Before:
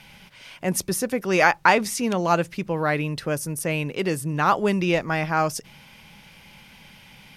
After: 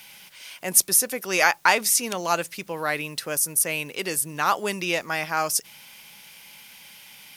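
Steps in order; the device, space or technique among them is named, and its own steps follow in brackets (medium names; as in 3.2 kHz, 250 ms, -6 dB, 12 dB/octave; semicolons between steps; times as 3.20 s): turntable without a phono preamp (RIAA curve recording; white noise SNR 36 dB); trim -2.5 dB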